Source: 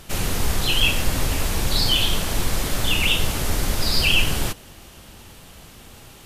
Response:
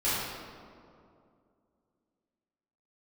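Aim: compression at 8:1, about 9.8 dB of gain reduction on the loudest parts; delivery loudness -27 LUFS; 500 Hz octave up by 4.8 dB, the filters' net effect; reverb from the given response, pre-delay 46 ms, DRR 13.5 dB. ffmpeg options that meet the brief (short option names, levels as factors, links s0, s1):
-filter_complex "[0:a]equalizer=f=500:t=o:g=6,acompressor=threshold=0.0708:ratio=8,asplit=2[s0][s1];[1:a]atrim=start_sample=2205,adelay=46[s2];[s1][s2]afir=irnorm=-1:irlink=0,volume=0.0562[s3];[s0][s3]amix=inputs=2:normalize=0,volume=1.19"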